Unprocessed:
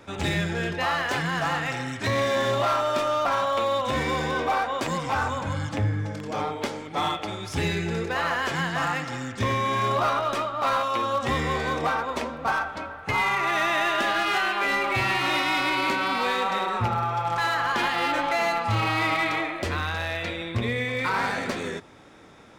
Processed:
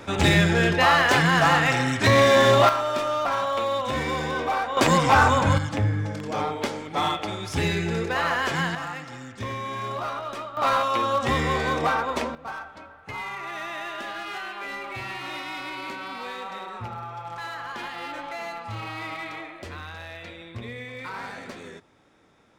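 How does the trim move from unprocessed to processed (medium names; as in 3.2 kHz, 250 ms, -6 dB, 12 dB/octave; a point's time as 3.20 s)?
+7.5 dB
from 2.69 s -1 dB
from 4.77 s +9 dB
from 5.58 s +1.5 dB
from 8.75 s -7 dB
from 10.57 s +2 dB
from 12.35 s -10 dB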